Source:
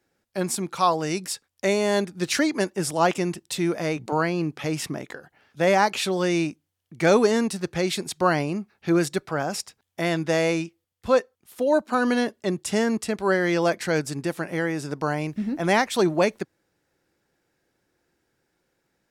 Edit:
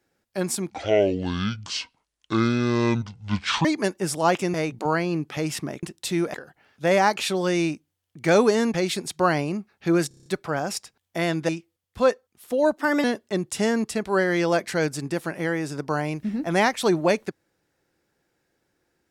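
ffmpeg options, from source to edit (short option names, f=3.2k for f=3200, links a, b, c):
-filter_complex "[0:a]asplit=16[a][b][c][d][e][f][g][h][i][j][k][l][m][n][o][p];[a]atrim=end=0.704[q];[b]atrim=start=0.7:end=2.41,asetpts=PTS-STARTPTS,asetrate=25578,aresample=44100[r];[c]atrim=start=2.406:end=3.302[s];[d]atrim=start=3.808:end=5.102[t];[e]atrim=start=3.298:end=3.812[u];[f]atrim=start=5.098:end=7.502[v];[g]atrim=start=7.748:end=9.122[w];[h]atrim=start=9.088:end=9.122[x];[i]atrim=start=9.088:end=9.122[y];[j]atrim=start=9.088:end=9.122[z];[k]atrim=start=9.088:end=9.122[aa];[l]atrim=start=9.088:end=9.122[ab];[m]atrim=start=9.088:end=10.322[ac];[n]atrim=start=10.568:end=11.864[ad];[o]atrim=start=11.86:end=12.17,asetpts=PTS-STARTPTS,asetrate=52479,aresample=44100,atrim=end_sample=11488,asetpts=PTS-STARTPTS[ae];[p]atrim=start=12.166[af];[q][r]acrossfade=d=0.004:c1=hsin:c2=hsin[ag];[ag][s]acrossfade=d=0.004:c1=hsin:c2=hsin[ah];[ah][t]acrossfade=d=0.004:c1=hsin:c2=hsin[ai];[ai][u]acrossfade=d=0.004:c1=hsin:c2=hsin[aj];[aj][v]acrossfade=d=0.004:c1=hsin:c2=hsin[ak];[ak][w]acrossfade=d=0.004:c1=hsin:c2=hsin[al];[al][x]acrossfade=d=0.004:c1=hsin:c2=hsin[am];[am][y]acrossfade=d=0.004:c1=hsin:c2=hsin[an];[an][z]acrossfade=d=0.004:c1=hsin:c2=hsin[ao];[ao][aa]acrossfade=d=0.004:c1=hsin:c2=hsin[ap];[ap][ab]acrossfade=d=0.004:c1=hsin:c2=hsin[aq];[aq][ac]acrossfade=d=0.004:c1=hsin:c2=hsin[ar];[ar][ad]acrossfade=d=0.004:c1=hsin:c2=hsin[as];[as][ae]acrossfade=d=0.004:c1=hsin:c2=hsin[at];[at][af]acrossfade=d=0.004:c1=hsin:c2=hsin"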